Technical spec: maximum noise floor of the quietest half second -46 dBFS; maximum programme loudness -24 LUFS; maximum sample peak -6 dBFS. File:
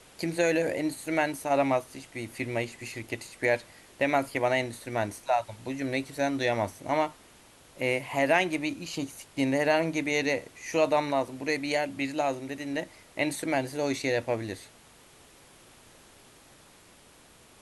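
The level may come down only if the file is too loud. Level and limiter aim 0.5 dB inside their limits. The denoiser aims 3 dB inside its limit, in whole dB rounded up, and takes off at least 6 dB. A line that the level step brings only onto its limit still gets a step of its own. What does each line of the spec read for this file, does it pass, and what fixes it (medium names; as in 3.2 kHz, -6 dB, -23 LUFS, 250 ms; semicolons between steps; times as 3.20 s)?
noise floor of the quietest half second -56 dBFS: pass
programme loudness -29.0 LUFS: pass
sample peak -11.0 dBFS: pass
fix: none needed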